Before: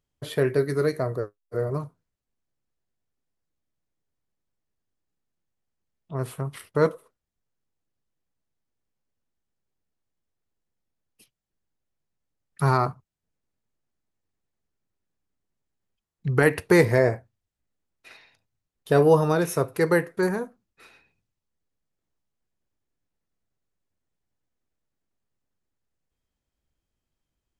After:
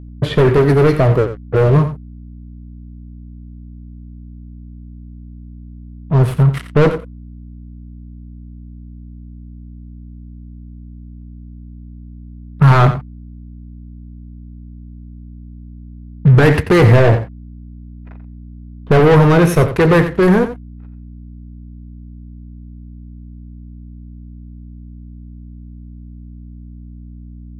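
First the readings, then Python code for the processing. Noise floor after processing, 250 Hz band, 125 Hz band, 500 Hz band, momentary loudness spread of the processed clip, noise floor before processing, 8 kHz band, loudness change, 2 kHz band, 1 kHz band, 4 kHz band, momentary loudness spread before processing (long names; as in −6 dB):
−35 dBFS, +12.0 dB, +16.0 dB, +8.5 dB, 9 LU, −84 dBFS, can't be measured, +11.0 dB, +8.0 dB, +9.5 dB, +11.5 dB, 15 LU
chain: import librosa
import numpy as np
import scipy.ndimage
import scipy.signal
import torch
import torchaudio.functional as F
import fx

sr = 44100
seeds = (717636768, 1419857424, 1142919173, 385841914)

p1 = fx.leveller(x, sr, passes=5)
p2 = fx.bass_treble(p1, sr, bass_db=6, treble_db=-11)
p3 = fx.env_lowpass(p2, sr, base_hz=1000.0, full_db=-9.5)
p4 = fx.add_hum(p3, sr, base_hz=60, snr_db=16)
p5 = p4 + fx.echo_single(p4, sr, ms=88, db=-11.5, dry=0)
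y = p5 * librosa.db_to_amplitude(-2.0)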